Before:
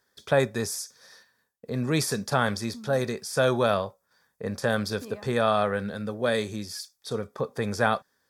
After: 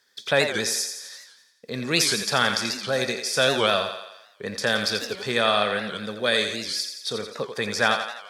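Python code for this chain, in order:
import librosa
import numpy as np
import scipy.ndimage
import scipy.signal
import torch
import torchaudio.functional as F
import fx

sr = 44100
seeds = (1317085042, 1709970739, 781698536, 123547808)

y = fx.weighting(x, sr, curve='D')
y = fx.echo_thinned(y, sr, ms=86, feedback_pct=57, hz=290.0, wet_db=-7.5)
y = fx.record_warp(y, sr, rpm=78.0, depth_cents=160.0)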